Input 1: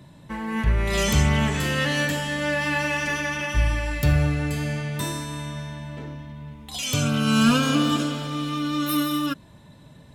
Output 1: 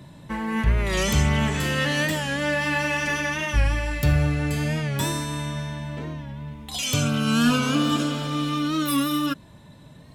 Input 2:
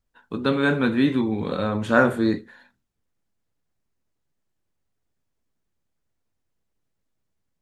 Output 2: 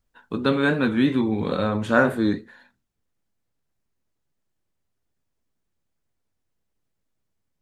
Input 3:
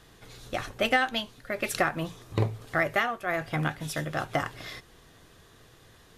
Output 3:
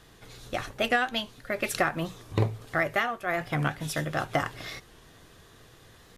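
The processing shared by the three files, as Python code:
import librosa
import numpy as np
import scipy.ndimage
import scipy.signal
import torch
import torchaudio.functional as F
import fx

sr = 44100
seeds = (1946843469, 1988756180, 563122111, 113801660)

p1 = fx.rider(x, sr, range_db=5, speed_s=0.5)
p2 = x + F.gain(torch.from_numpy(p1), -0.5).numpy()
p3 = fx.record_warp(p2, sr, rpm=45.0, depth_cents=100.0)
y = F.gain(torch.from_numpy(p3), -5.5).numpy()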